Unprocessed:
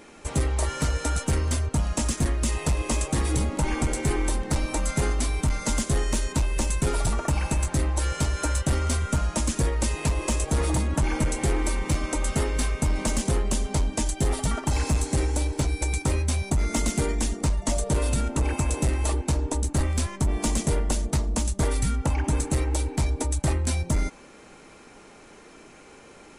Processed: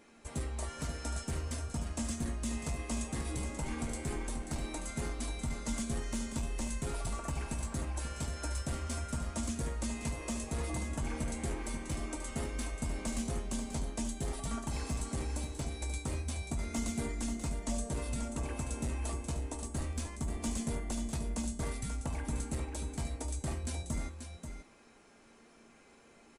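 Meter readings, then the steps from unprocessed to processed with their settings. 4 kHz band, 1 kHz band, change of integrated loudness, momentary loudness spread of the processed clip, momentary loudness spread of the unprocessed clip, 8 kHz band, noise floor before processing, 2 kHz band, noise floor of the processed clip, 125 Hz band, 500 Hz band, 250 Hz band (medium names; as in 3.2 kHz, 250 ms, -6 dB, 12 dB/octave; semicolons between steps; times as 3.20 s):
-11.5 dB, -12.0 dB, -12.0 dB, 3 LU, 2 LU, -11.0 dB, -49 dBFS, -11.5 dB, -60 dBFS, -13.0 dB, -12.5 dB, -9.0 dB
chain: feedback comb 230 Hz, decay 0.46 s, harmonics odd, mix 80%; delay 535 ms -8 dB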